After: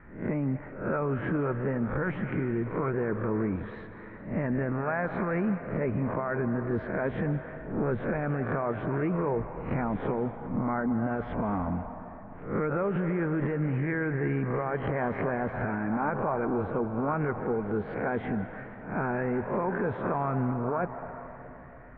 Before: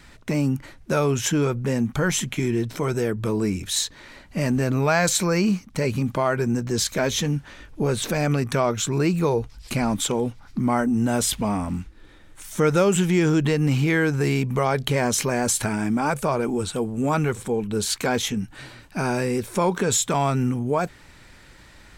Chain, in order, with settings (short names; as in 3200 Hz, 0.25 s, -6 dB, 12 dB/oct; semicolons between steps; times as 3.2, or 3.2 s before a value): spectral swells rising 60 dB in 0.46 s; steep low-pass 1900 Hz 36 dB/oct; limiter -16.5 dBFS, peak gain reduction 8.5 dB; on a send at -8 dB: resonant low shelf 480 Hz -7.5 dB, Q 1.5 + reverb RT60 3.3 s, pre-delay 0.145 s; on the sum: harmonic-percussive split harmonic -4 dB; gain -2 dB